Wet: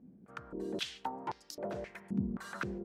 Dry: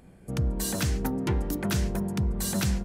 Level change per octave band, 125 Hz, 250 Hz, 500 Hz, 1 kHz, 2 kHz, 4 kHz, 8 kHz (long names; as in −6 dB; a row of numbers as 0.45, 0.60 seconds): −17.0, −10.0, −7.0, −2.5, −7.0, −7.5, −20.0 decibels